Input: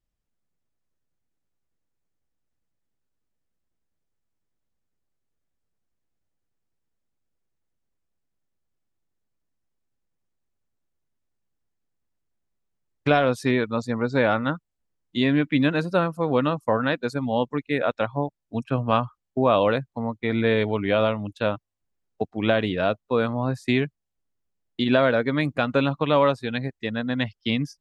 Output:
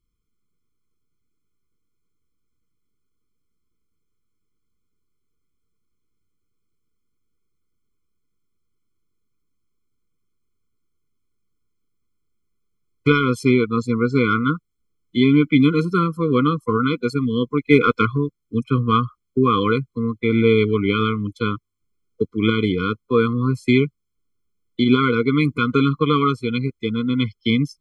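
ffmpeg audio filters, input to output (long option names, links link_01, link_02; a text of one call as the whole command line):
ffmpeg -i in.wav -filter_complex "[0:a]asplit=3[link_01][link_02][link_03];[link_01]afade=type=out:start_time=17.65:duration=0.02[link_04];[link_02]acontrast=61,afade=type=in:start_time=17.65:duration=0.02,afade=type=out:start_time=18.16:duration=0.02[link_05];[link_03]afade=type=in:start_time=18.16:duration=0.02[link_06];[link_04][link_05][link_06]amix=inputs=3:normalize=0,afftfilt=real='re*eq(mod(floor(b*sr/1024/500),2),0)':imag='im*eq(mod(floor(b*sr/1024/500),2),0)':win_size=1024:overlap=0.75,volume=6.5dB" out.wav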